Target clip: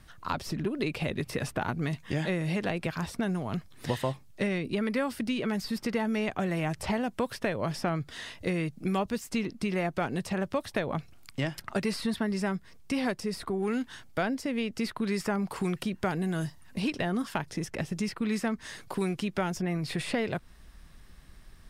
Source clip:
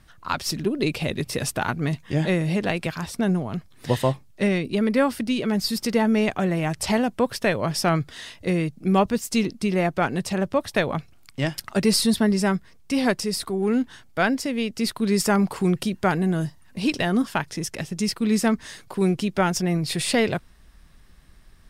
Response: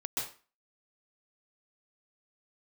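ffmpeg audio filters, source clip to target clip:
-filter_complex "[0:a]acrossover=split=900|2500[a][b][c];[a]acompressor=threshold=-29dB:ratio=4[d];[b]acompressor=threshold=-37dB:ratio=4[e];[c]acompressor=threshold=-45dB:ratio=4[f];[d][e][f]amix=inputs=3:normalize=0"

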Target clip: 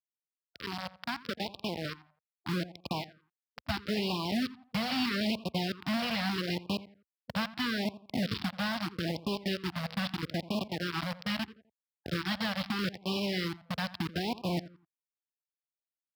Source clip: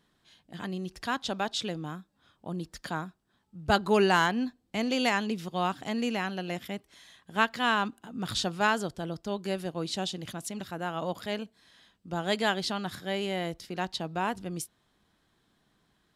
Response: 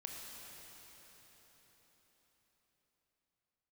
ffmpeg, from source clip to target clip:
-filter_complex "[0:a]aeval=exprs='0.299*(cos(1*acos(clip(val(0)/0.299,-1,1)))-cos(1*PI/2))+0.00596*(cos(4*acos(clip(val(0)/0.299,-1,1)))-cos(4*PI/2))':c=same,deesser=0.8,asubboost=boost=8.5:cutoff=190,acrossover=split=260|940[a][b][c];[a]acompressor=threshold=-35dB:ratio=4[d];[b]acompressor=threshold=-37dB:ratio=4[e];[c]acompressor=threshold=-34dB:ratio=4[f];[d][e][f]amix=inputs=3:normalize=0,aresample=11025,acrusher=bits=4:mix=0:aa=0.000001,aresample=44100,highpass=f=70:w=0.5412,highpass=f=70:w=1.3066,acrusher=bits=5:mode=log:mix=0:aa=0.000001,asplit=2[g][h];[h]adelay=85,lowpass=f=2.1k:p=1,volume=-16dB,asplit=2[i][j];[j]adelay=85,lowpass=f=2.1k:p=1,volume=0.33,asplit=2[k][l];[l]adelay=85,lowpass=f=2.1k:p=1,volume=0.33[m];[g][i][k][m]amix=inputs=4:normalize=0,afftfilt=real='re*(1-between(b*sr/1024,320*pow(1700/320,0.5+0.5*sin(2*PI*0.78*pts/sr))/1.41,320*pow(1700/320,0.5+0.5*sin(2*PI*0.78*pts/sr))*1.41))':imag='im*(1-between(b*sr/1024,320*pow(1700/320,0.5+0.5*sin(2*PI*0.78*pts/sr))/1.41,320*pow(1700/320,0.5+0.5*sin(2*PI*0.78*pts/sr))*1.41))':win_size=1024:overlap=0.75,volume=-2dB"

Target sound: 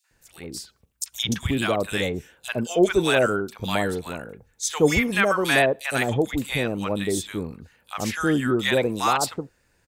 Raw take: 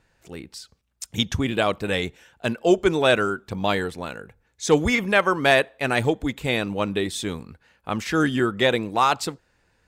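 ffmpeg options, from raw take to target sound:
-filter_complex "[0:a]highshelf=f=6.8k:g=10.5,acrossover=split=920|3600[a][b][c];[b]adelay=40[d];[a]adelay=110[e];[e][d][c]amix=inputs=3:normalize=0,asplit=3[f][g][h];[f]afade=t=out:st=6.39:d=0.02[i];[g]adynamicequalizer=threshold=0.0158:dfrequency=1600:dqfactor=0.7:tfrequency=1600:tqfactor=0.7:attack=5:release=100:ratio=0.375:range=2:mode=cutabove:tftype=highshelf,afade=t=in:st=6.39:d=0.02,afade=t=out:st=8.63:d=0.02[j];[h]afade=t=in:st=8.63:d=0.02[k];[i][j][k]amix=inputs=3:normalize=0"

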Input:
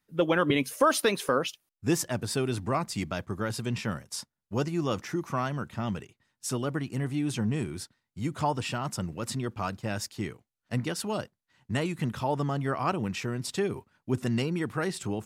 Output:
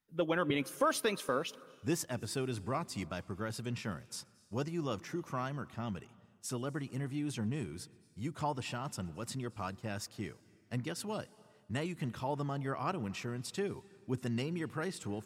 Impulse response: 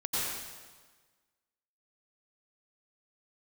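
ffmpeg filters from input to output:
-filter_complex "[0:a]asplit=2[a][b];[1:a]atrim=start_sample=2205,adelay=125[c];[b][c]afir=irnorm=-1:irlink=0,volume=-29dB[d];[a][d]amix=inputs=2:normalize=0,volume=-7.5dB"

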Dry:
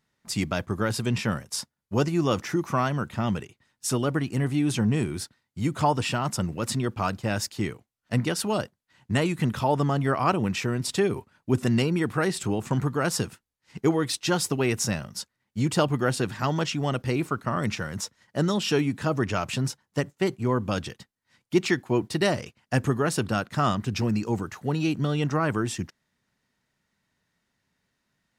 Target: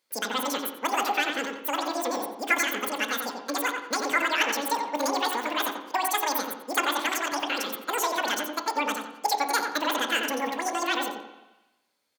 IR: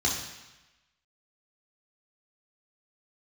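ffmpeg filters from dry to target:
-filter_complex "[0:a]highpass=f=290:p=1,asplit=2[a][b];[b]adelay=208,lowpass=f=970:p=1,volume=-3.5dB,asplit=2[c][d];[d]adelay=208,lowpass=f=970:p=1,volume=0.37,asplit=2[e][f];[f]adelay=208,lowpass=f=970:p=1,volume=0.37,asplit=2[g][h];[h]adelay=208,lowpass=f=970:p=1,volume=0.37,asplit=2[i][j];[j]adelay=208,lowpass=f=970:p=1,volume=0.37[k];[c][e][g][i][k]amix=inputs=5:normalize=0[l];[a][l]amix=inputs=2:normalize=0,asetrate=102753,aresample=44100,asplit=2[m][n];[1:a]atrim=start_sample=2205,lowpass=3.1k[o];[n][o]afir=irnorm=-1:irlink=0,volume=-15.5dB[p];[m][p]amix=inputs=2:normalize=0"

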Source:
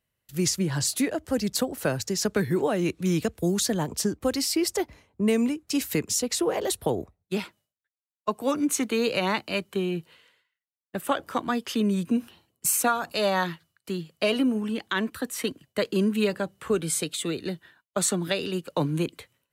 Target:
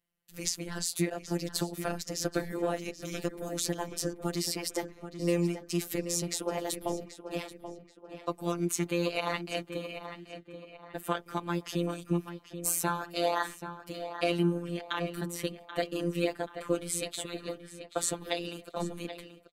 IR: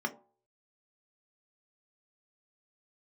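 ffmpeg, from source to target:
-filter_complex "[0:a]aeval=exprs='val(0)*sin(2*PI*80*n/s)':c=same,afftfilt=real='hypot(re,im)*cos(PI*b)':imag='0':win_size=1024:overlap=0.75,asplit=2[a][b];[b]adelay=782,lowpass=f=3.1k:p=1,volume=-10dB,asplit=2[c][d];[d]adelay=782,lowpass=f=3.1k:p=1,volume=0.42,asplit=2[e][f];[f]adelay=782,lowpass=f=3.1k:p=1,volume=0.42,asplit=2[g][h];[h]adelay=782,lowpass=f=3.1k:p=1,volume=0.42[i];[a][c][e][g][i]amix=inputs=5:normalize=0"

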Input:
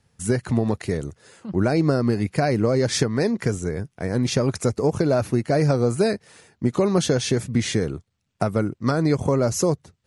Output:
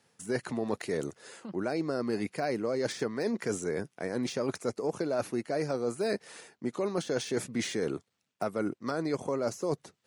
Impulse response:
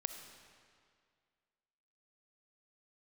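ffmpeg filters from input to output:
-af "deesser=0.65,highpass=270,areverse,acompressor=threshold=-29dB:ratio=6,areverse,volume=1dB"

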